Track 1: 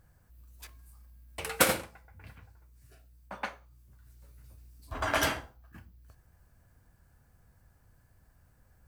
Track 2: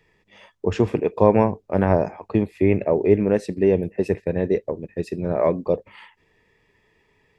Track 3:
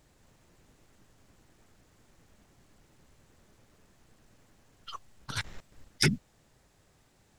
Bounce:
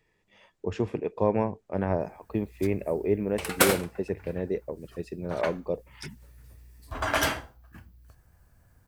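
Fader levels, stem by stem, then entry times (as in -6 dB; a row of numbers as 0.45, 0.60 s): +2.5, -9.0, -16.5 dB; 2.00, 0.00, 0.00 s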